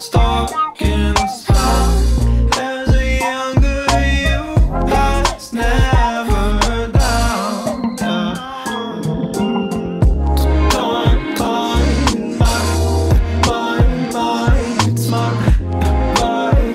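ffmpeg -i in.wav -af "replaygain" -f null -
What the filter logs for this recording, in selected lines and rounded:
track_gain = -0.8 dB
track_peak = 0.609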